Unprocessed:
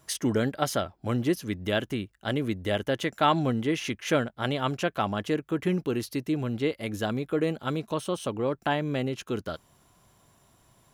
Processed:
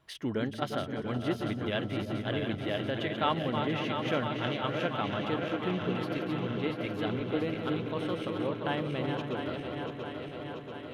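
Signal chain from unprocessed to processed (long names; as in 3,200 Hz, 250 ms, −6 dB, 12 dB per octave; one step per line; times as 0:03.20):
feedback delay that plays each chunk backwards 343 ms, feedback 83%, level −6.5 dB
high shelf with overshoot 4,800 Hz −12 dB, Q 1.5
echo whose low-pass opens from repeat to repeat 174 ms, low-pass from 200 Hz, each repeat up 2 octaves, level −6 dB
level −7 dB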